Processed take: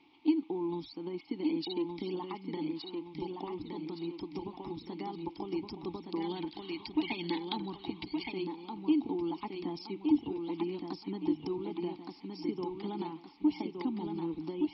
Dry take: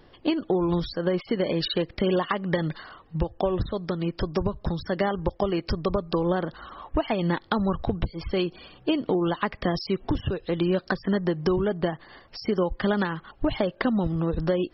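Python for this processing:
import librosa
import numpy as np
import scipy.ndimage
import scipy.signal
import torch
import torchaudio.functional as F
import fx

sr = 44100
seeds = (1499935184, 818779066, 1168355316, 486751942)

y = fx.echo_feedback(x, sr, ms=1168, feedback_pct=41, wet_db=-4.5)
y = fx.spec_box(y, sr, start_s=6.21, length_s=2.11, low_hz=1500.0, high_hz=4800.0, gain_db=12)
y = fx.dmg_noise_band(y, sr, seeds[0], low_hz=590.0, high_hz=3200.0, level_db=-54.0)
y = fx.vowel_filter(y, sr, vowel='u')
y = fx.high_shelf_res(y, sr, hz=3200.0, db=12.5, q=1.5)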